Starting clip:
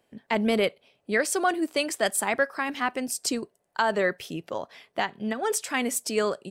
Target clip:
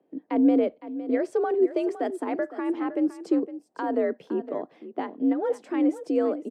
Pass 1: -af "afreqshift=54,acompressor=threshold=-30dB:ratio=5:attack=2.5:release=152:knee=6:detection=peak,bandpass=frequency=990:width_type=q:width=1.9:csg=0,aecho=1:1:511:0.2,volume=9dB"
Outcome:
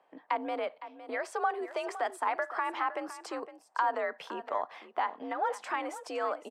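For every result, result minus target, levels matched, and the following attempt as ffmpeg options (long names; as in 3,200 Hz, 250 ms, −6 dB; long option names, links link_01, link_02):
250 Hz band −13.0 dB; downward compressor: peak gain reduction +9.5 dB
-af "afreqshift=54,acompressor=threshold=-30dB:ratio=5:attack=2.5:release=152:knee=6:detection=peak,bandpass=frequency=310:width_type=q:width=1.9:csg=0,aecho=1:1:511:0.2,volume=9dB"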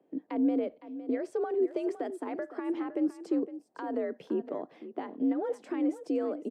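downward compressor: peak gain reduction +9.5 dB
-af "afreqshift=54,acompressor=threshold=-18dB:ratio=5:attack=2.5:release=152:knee=6:detection=peak,bandpass=frequency=310:width_type=q:width=1.9:csg=0,aecho=1:1:511:0.2,volume=9dB"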